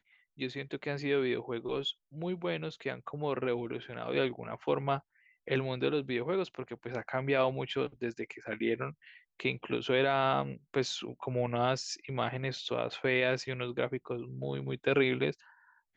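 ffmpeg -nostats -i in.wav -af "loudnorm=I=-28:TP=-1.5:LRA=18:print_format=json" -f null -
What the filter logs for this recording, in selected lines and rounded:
"input_i" : "-33.4",
"input_tp" : "-14.7",
"input_lra" : "2.6",
"input_thresh" : "-43.6",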